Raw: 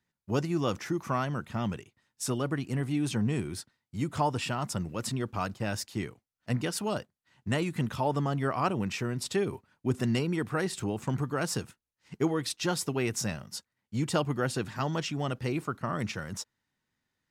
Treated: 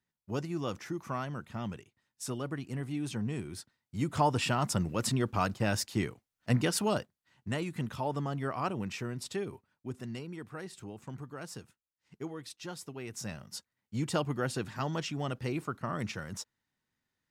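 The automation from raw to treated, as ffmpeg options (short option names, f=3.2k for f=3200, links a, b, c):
-af "volume=12dB,afade=t=in:st=3.47:d=1.06:silence=0.375837,afade=t=out:st=6.8:d=0.71:silence=0.421697,afade=t=out:st=9.06:d=0.95:silence=0.421697,afade=t=in:st=13.06:d=0.5:silence=0.334965"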